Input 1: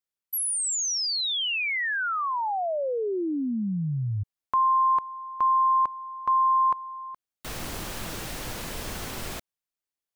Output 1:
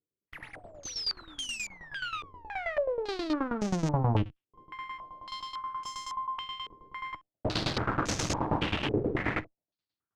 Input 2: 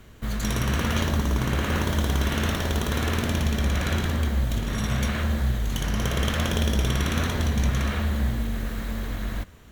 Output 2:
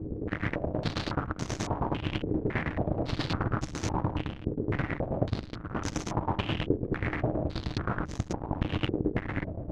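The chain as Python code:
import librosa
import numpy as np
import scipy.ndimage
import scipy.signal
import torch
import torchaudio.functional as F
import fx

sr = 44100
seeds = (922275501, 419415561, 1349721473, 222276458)

p1 = fx.halfwave_hold(x, sr)
p2 = fx.over_compress(p1, sr, threshold_db=-25.0, ratio=-0.5)
p3 = p1 + F.gain(torch.from_numpy(p2), 0.5).numpy()
p4 = (np.mod(10.0 ** (21.0 / 20.0) * p3 + 1.0, 2.0) - 1.0) / 10.0 ** (21.0 / 20.0)
p5 = fx.peak_eq(p4, sr, hz=120.0, db=12.5, octaves=1.9)
p6 = p5 + fx.room_early_taps(p5, sr, ms=(10, 67), db=(-16.5, -16.0), dry=0)
p7 = fx.cheby_harmonics(p6, sr, harmonics=(4, 6), levels_db=(-16, -9), full_scale_db=-9.0)
p8 = fx.tremolo_shape(p7, sr, shape='saw_down', hz=9.4, depth_pct=85)
p9 = fx.cheby_harmonics(p8, sr, harmonics=(8,), levels_db=(-20,), full_scale_db=-6.5)
p10 = fx.peak_eq(p9, sr, hz=310.0, db=8.0, octaves=0.2)
p11 = fx.filter_held_lowpass(p10, sr, hz=3.6, low_hz=430.0, high_hz=6300.0)
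y = F.gain(torch.from_numpy(p11), -8.0).numpy()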